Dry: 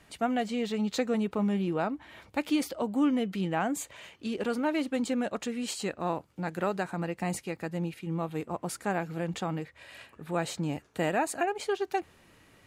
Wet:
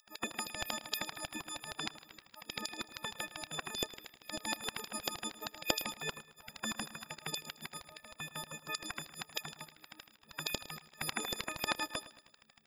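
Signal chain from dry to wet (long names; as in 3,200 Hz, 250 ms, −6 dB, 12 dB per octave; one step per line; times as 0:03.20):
every partial snapped to a pitch grid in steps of 6 semitones
auto-filter high-pass square 6.4 Hz 430–4,400 Hz
gate on every frequency bin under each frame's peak −20 dB weak
on a send: repeating echo 109 ms, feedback 43%, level −16 dB
on the sum: level +4 dB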